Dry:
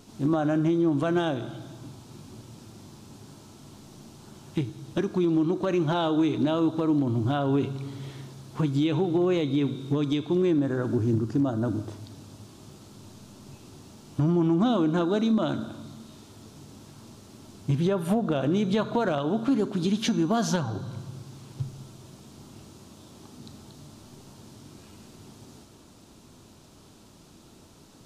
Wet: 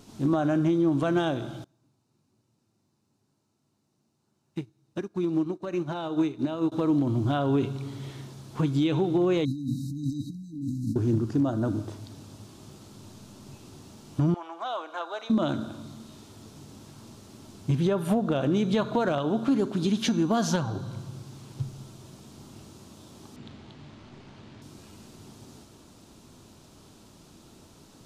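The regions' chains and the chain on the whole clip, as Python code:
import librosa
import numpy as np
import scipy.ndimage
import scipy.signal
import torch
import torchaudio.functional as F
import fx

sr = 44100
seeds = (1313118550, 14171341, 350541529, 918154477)

y = fx.chain(x, sr, fx.highpass(hz=81.0, slope=12),
    fx.notch(hz=3300.0, q=8.3),
    fx.upward_expand(threshold_db=-37.0, expansion=2.5), at=(1.64, 6.72))
y = fx.chain(y, sr, fx.high_shelf(hz=7400.0, db=8.0),
    fx.over_compress(threshold_db=-30.0, ratio=-1.0),
    fx.brickwall_bandstop(low_hz=310.0, high_hz=3800.0), at=(9.45, 10.96))
y = fx.chain(y, sr, fx.highpass(hz=660.0, slope=24),
    fx.high_shelf(hz=3900.0, db=-9.5), at=(14.34, 15.3))
y = fx.chain(y, sr, fx.resample_bad(factor=6, down='none', up='hold'),
    fx.lowpass(hz=6900.0, slope=24), at=(23.36, 24.62))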